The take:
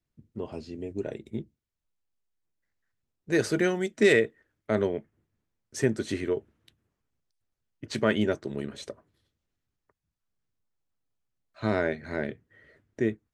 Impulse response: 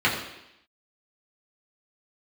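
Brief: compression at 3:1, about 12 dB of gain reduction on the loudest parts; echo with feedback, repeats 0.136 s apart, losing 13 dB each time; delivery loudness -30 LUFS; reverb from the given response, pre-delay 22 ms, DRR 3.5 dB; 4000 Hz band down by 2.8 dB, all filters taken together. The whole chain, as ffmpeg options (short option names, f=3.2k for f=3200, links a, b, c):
-filter_complex "[0:a]equalizer=f=4k:t=o:g=-3.5,acompressor=threshold=-33dB:ratio=3,aecho=1:1:136|272|408:0.224|0.0493|0.0108,asplit=2[a][b];[1:a]atrim=start_sample=2205,adelay=22[c];[b][c]afir=irnorm=-1:irlink=0,volume=-20.5dB[d];[a][d]amix=inputs=2:normalize=0,volume=6.5dB"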